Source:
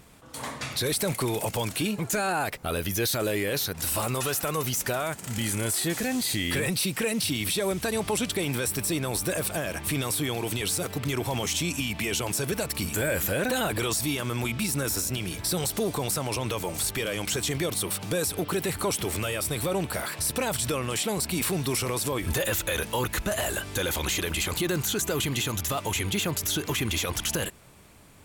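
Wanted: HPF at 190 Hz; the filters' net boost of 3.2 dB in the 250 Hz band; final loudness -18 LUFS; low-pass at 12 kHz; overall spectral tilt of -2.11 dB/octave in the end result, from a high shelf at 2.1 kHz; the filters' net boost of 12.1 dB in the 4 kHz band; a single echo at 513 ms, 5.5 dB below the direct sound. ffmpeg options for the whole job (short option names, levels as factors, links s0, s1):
-af "highpass=190,lowpass=12000,equalizer=f=250:t=o:g=6,highshelf=f=2100:g=7.5,equalizer=f=4000:t=o:g=8,aecho=1:1:513:0.531,volume=1.19"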